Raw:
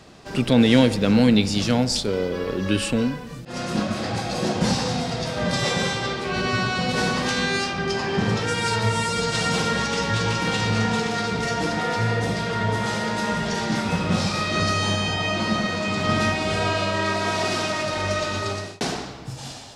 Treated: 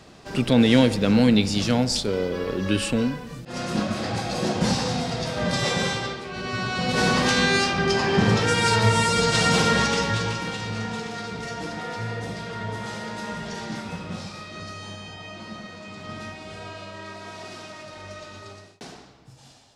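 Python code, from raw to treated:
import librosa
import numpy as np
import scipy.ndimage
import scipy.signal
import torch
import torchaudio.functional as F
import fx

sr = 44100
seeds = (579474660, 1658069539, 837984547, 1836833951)

y = fx.gain(x, sr, db=fx.line((5.96, -1.0), (6.31, -9.0), (7.13, 3.0), (9.84, 3.0), (10.58, -8.0), (13.67, -8.0), (14.55, -15.0)))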